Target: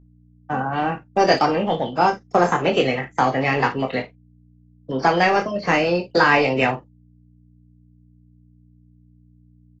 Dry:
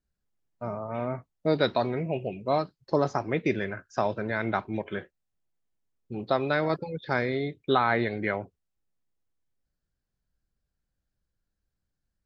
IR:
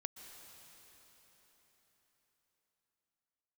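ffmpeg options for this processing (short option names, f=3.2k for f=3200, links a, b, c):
-filter_complex "[0:a]agate=range=-33dB:threshold=-39dB:ratio=3:detection=peak,asetrate=55125,aresample=44100,acrossover=split=290[a][b];[a]acompressor=threshold=-35dB:ratio=5[c];[c][b]amix=inputs=2:normalize=0,highpass=100,asplit=2[d][e];[e]volume=27dB,asoftclip=hard,volume=-27dB,volume=-6dB[f];[d][f]amix=inputs=2:normalize=0,aeval=exprs='val(0)+0.00178*(sin(2*PI*60*n/s)+sin(2*PI*2*60*n/s)/2+sin(2*PI*3*60*n/s)/3+sin(2*PI*4*60*n/s)/4+sin(2*PI*5*60*n/s)/5)':c=same,aecho=1:1:23|59:0.501|0.2,volume=5.5dB" -ar 24000 -c:a aac -b:a 24k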